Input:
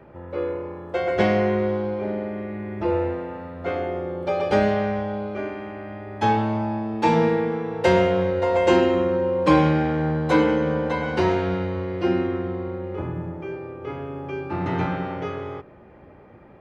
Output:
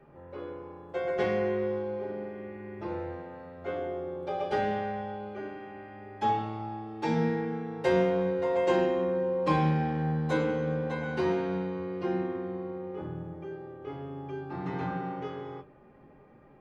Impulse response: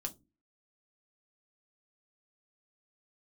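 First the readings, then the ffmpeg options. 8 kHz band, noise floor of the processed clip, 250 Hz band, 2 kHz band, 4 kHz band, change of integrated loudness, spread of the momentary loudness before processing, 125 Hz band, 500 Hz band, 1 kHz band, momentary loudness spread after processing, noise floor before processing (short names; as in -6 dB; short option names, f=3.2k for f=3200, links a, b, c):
n/a, -55 dBFS, -9.0 dB, -8.5 dB, -10.0 dB, -8.0 dB, 14 LU, -7.0 dB, -7.5 dB, -7.5 dB, 15 LU, -48 dBFS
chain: -filter_complex "[1:a]atrim=start_sample=2205,atrim=end_sample=3528[a];[0:a][a]afir=irnorm=-1:irlink=0,volume=-8dB"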